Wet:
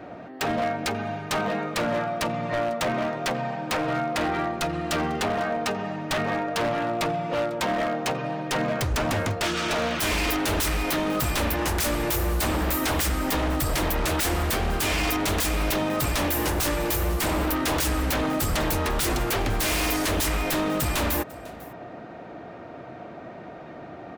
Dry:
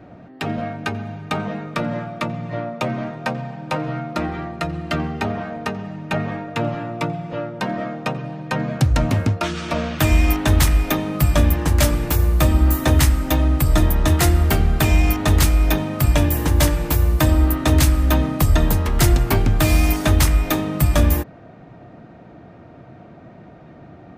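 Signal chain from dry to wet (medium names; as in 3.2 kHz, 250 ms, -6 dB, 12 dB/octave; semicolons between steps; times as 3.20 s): tone controls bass -12 dB, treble -1 dB; in parallel at 0 dB: compression, threshold -29 dBFS, peak gain reduction 13 dB; on the sum: wavefolder -19.5 dBFS; delay 498 ms -21.5 dB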